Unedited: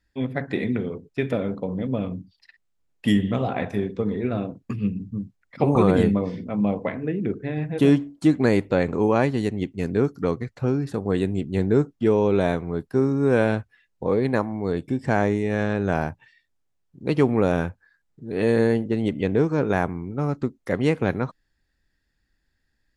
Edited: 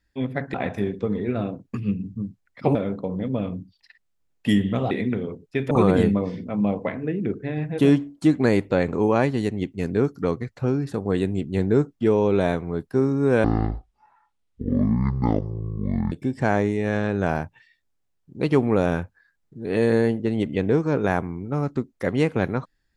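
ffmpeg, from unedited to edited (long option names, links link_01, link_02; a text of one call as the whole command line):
ffmpeg -i in.wav -filter_complex "[0:a]asplit=7[link_01][link_02][link_03][link_04][link_05][link_06][link_07];[link_01]atrim=end=0.542[link_08];[link_02]atrim=start=3.498:end=5.712[link_09];[link_03]atrim=start=1.338:end=3.502[link_10];[link_04]atrim=start=0.538:end=1.342[link_11];[link_05]atrim=start=5.708:end=13.444[link_12];[link_06]atrim=start=13.44:end=14.78,asetpts=PTS-STARTPTS,asetrate=22050,aresample=44100[link_13];[link_07]atrim=start=14.776[link_14];[link_08][link_09]acrossfade=duration=0.004:curve1=hsin:curve2=hsin[link_15];[link_15][link_10]acrossfade=duration=0.004:curve1=hsin:curve2=hsin[link_16];[link_16][link_11]acrossfade=duration=0.004:curve1=hsin:curve2=hsin[link_17];[link_17][link_12]acrossfade=duration=0.004:curve1=hsin:curve2=hsin[link_18];[link_18][link_13]acrossfade=duration=0.004:curve1=hsin:curve2=hsin[link_19];[link_19][link_14]acrossfade=duration=0.004:curve1=hsin:curve2=hsin" out.wav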